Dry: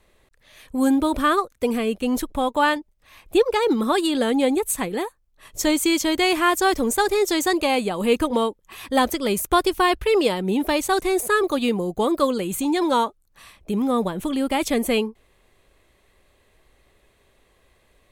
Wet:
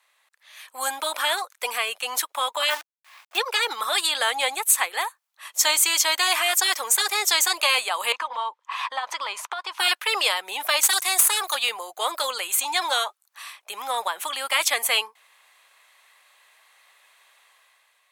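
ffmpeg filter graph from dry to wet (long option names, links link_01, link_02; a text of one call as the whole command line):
ffmpeg -i in.wav -filter_complex "[0:a]asettb=1/sr,asplit=3[link_01][link_02][link_03];[link_01]atrim=end=2.704[link_04];[link_02]atrim=start=2.7:end=3.38,asetpts=PTS-STARTPTS,afade=type=in:duration=0.004:curve=qsin,afade=type=out:start_time=0.676:duration=0.004:curve=qsin,agate=range=-33dB:threshold=-56dB:ratio=3:release=100:detection=peak,highpass=160,lowpass=2300,acrusher=bits=7:dc=4:mix=0:aa=0.000001[link_05];[link_03]atrim=start=3.376[link_06];[link_04][link_05]acrossfade=duration=0.004:curve1=hsin:curve2=qsin[link_07];[link_07][link_06]acrossfade=duration=0.004:curve1=qsin:curve2=hsin,asettb=1/sr,asplit=3[link_08][link_09][link_10];[link_08]atrim=end=8.124[link_11];[link_09]atrim=start=8.12:end=9.79,asetpts=PTS-STARTPTS,afade=type=in:duration=0.004:curve=qsin,afade=type=out:start_time=1.666:duration=0.004:curve=qsin,lowpass=4300,equalizer=frequency=1000:width_type=o:width=0.45:gain=13.5,acompressor=threshold=-25dB:ratio=6:attack=3.2:release=140:knee=1:detection=peak[link_12];[link_10]atrim=start=9.786[link_13];[link_11][link_12]acrossfade=duration=0.004:curve1=hsin:curve2=qsin[link_14];[link_14][link_13]acrossfade=duration=0.004:curve1=qsin:curve2=hsin,asettb=1/sr,asplit=3[link_15][link_16][link_17];[link_15]atrim=end=10.834[link_18];[link_16]atrim=start=10.83:end=11.55,asetpts=PTS-STARTPTS,afade=type=in:duration=0.004:curve=qsin,afade=type=out:start_time=0.716:duration=0.004:curve=qsin,highpass=230,highshelf=frequency=4000:gain=9.5,aeval=exprs='(tanh(3.98*val(0)+0.55)-tanh(0.55))/3.98':channel_layout=same[link_19];[link_17]atrim=start=11.546[link_20];[link_18][link_19]acrossfade=duration=0.004:curve1=hsin:curve2=qsin[link_21];[link_21][link_20]acrossfade=duration=0.004:curve1=qsin:curve2=hsin,highpass=frequency=870:width=0.5412,highpass=frequency=870:width=1.3066,afftfilt=real='re*lt(hypot(re,im),0.282)':imag='im*lt(hypot(re,im),0.282)':win_size=1024:overlap=0.75,dynaudnorm=framelen=140:gausssize=9:maxgain=8dB" out.wav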